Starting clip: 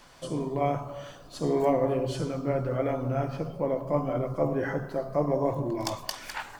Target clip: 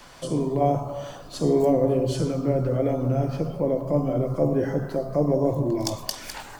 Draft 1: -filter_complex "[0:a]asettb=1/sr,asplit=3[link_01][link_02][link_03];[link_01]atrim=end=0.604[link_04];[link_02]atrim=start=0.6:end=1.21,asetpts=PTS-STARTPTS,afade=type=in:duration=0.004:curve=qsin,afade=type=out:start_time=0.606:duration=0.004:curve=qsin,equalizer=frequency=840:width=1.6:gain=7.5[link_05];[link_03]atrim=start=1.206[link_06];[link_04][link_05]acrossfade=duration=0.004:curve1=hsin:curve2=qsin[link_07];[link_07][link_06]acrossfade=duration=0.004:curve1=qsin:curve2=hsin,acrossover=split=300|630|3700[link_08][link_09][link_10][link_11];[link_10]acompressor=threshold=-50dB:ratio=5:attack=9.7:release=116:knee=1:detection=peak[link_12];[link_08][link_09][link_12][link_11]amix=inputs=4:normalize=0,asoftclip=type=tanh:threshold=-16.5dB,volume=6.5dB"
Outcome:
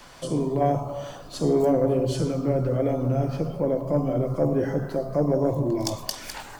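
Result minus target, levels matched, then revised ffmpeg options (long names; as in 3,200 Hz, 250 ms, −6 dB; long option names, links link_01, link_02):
soft clipping: distortion +14 dB
-filter_complex "[0:a]asettb=1/sr,asplit=3[link_01][link_02][link_03];[link_01]atrim=end=0.604[link_04];[link_02]atrim=start=0.6:end=1.21,asetpts=PTS-STARTPTS,afade=type=in:duration=0.004:curve=qsin,afade=type=out:start_time=0.606:duration=0.004:curve=qsin,equalizer=frequency=840:width=1.6:gain=7.5[link_05];[link_03]atrim=start=1.206[link_06];[link_04][link_05]acrossfade=duration=0.004:curve1=hsin:curve2=qsin[link_07];[link_07][link_06]acrossfade=duration=0.004:curve1=qsin:curve2=hsin,acrossover=split=300|630|3700[link_08][link_09][link_10][link_11];[link_10]acompressor=threshold=-50dB:ratio=5:attack=9.7:release=116:knee=1:detection=peak[link_12];[link_08][link_09][link_12][link_11]amix=inputs=4:normalize=0,asoftclip=type=tanh:threshold=-9dB,volume=6.5dB"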